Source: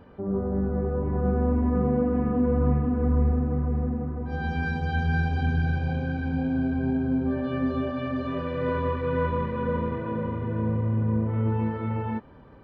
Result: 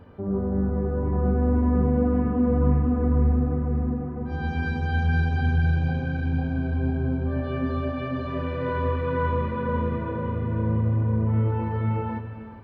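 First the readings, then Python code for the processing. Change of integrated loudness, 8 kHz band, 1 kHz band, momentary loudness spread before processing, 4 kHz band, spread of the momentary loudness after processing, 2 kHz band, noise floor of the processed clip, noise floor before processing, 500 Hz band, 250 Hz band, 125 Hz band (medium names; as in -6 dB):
+1.5 dB, no reading, +1.0 dB, 6 LU, +0.5 dB, 7 LU, +1.0 dB, -33 dBFS, -34 dBFS, 0.0 dB, +0.5 dB, +3.0 dB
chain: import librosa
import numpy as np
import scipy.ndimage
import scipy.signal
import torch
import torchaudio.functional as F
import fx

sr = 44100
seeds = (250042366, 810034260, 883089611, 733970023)

p1 = fx.peak_eq(x, sr, hz=95.0, db=8.0, octaves=0.5)
p2 = p1 + fx.echo_single(p1, sr, ms=411, db=-15.0, dry=0)
y = fx.rev_gated(p2, sr, seeds[0], gate_ms=340, shape='flat', drr_db=8.0)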